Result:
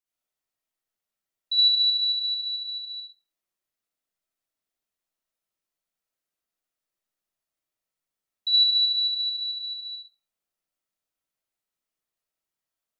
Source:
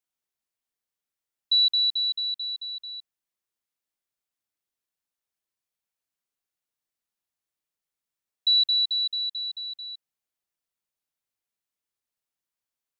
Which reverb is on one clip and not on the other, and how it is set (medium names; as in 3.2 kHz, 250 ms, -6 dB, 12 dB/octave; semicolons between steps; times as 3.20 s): algorithmic reverb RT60 0.91 s, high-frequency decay 0.3×, pre-delay 35 ms, DRR -6.5 dB; trim -5.5 dB